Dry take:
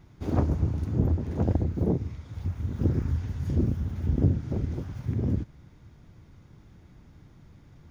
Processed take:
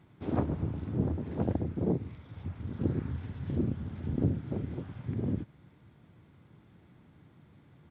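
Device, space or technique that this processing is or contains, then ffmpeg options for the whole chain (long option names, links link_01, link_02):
Bluetooth headset: -af "highpass=120,aresample=8000,aresample=44100,volume=-2.5dB" -ar 32000 -c:a sbc -b:a 64k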